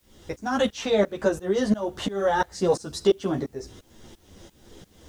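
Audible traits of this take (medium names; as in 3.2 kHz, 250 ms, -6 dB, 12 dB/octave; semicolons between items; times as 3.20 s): tremolo saw up 2.9 Hz, depth 100%; a quantiser's noise floor 12-bit, dither triangular; a shimmering, thickened sound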